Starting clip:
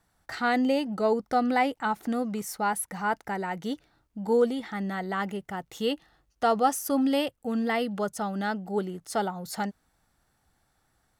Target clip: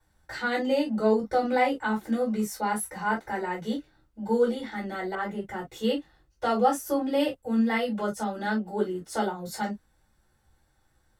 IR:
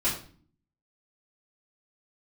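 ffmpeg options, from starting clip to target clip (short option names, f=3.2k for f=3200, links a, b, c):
-filter_complex "[1:a]atrim=start_sample=2205,atrim=end_sample=4410,asetrate=66150,aresample=44100[a];[0:a][a]afir=irnorm=-1:irlink=0,asettb=1/sr,asplit=3[b][c][d];[b]atrim=end=5.154[e];[c]atrim=start=5.15:end=7.2,asetpts=PTS-STARTPTS,afade=t=in:d=0.004:c=qsin,afade=t=out:st=2.046:d=0.004:c=qsin,adynamicequalizer=threshold=0.0158:dfrequency=2000:dqfactor=0.7:tfrequency=2000:tqfactor=0.7:attack=5:release=100:ratio=0.375:range=3:mode=cutabove:tftype=highshelf[f];[d]atrim=start=7.196[g];[e][f]acrossfade=d=0.004:c1=hsin:c2=qsin[h];[h][g]acrossfade=d=0.004:c1=qsin:c2=hsin,volume=-6dB"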